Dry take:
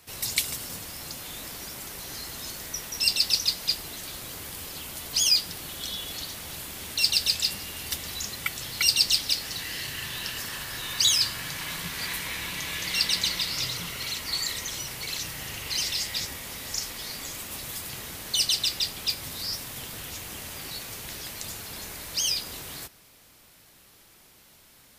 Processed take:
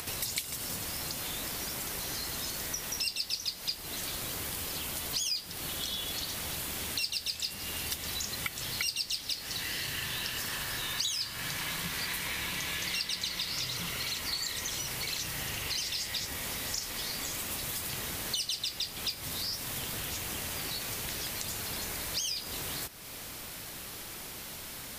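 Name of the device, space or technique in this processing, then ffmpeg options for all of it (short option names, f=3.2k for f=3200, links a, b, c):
upward and downward compression: -af "acompressor=mode=upward:threshold=-30dB:ratio=2.5,acompressor=threshold=-31dB:ratio=5"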